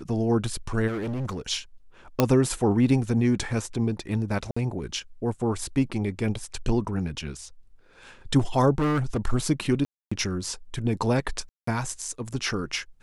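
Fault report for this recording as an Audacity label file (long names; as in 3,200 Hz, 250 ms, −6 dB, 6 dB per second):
0.870000	1.400000	clipping −27 dBFS
2.200000	2.200000	click −6 dBFS
4.510000	4.570000	drop-out 55 ms
8.780000	9.170000	clipping −20.5 dBFS
9.850000	10.120000	drop-out 265 ms
11.490000	11.670000	drop-out 184 ms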